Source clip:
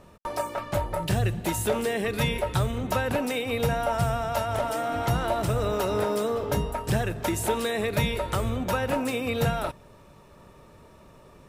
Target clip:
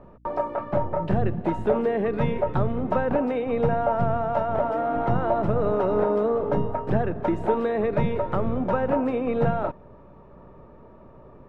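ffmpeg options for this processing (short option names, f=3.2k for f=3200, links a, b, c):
-filter_complex "[0:a]acrossover=split=120[a][b];[a]aeval=exprs='abs(val(0))':c=same[c];[c][b]amix=inputs=2:normalize=0,lowpass=1.1k,aeval=exprs='val(0)+0.00112*(sin(2*PI*60*n/s)+sin(2*PI*2*60*n/s)/2+sin(2*PI*3*60*n/s)/3+sin(2*PI*4*60*n/s)/4+sin(2*PI*5*60*n/s)/5)':c=same,volume=4.5dB"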